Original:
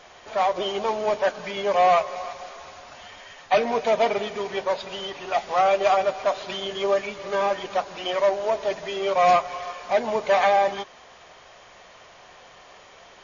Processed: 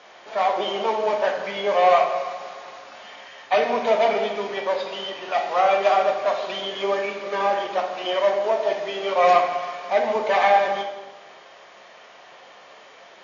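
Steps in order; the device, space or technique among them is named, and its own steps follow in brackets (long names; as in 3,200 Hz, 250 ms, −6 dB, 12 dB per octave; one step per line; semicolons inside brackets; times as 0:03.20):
supermarket ceiling speaker (band-pass filter 230–5,400 Hz; convolution reverb RT60 1.1 s, pre-delay 7 ms, DRR 2 dB)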